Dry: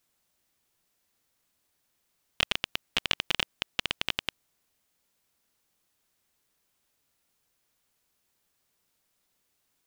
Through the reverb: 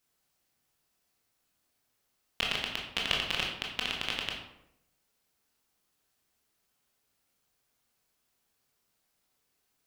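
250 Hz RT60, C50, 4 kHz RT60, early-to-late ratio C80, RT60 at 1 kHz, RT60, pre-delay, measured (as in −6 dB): 0.90 s, 4.0 dB, 0.50 s, 7.5 dB, 0.75 s, 0.80 s, 17 ms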